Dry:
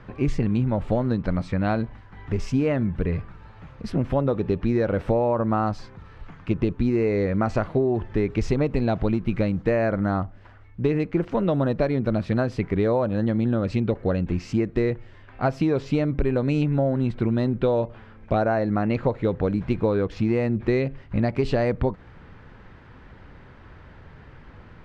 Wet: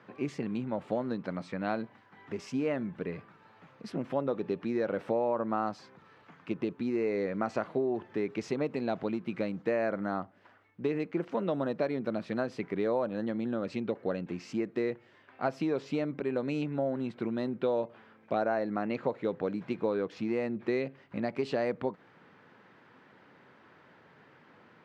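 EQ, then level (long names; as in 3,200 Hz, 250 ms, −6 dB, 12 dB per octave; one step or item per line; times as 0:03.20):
Bessel high-pass filter 240 Hz, order 4
−6.5 dB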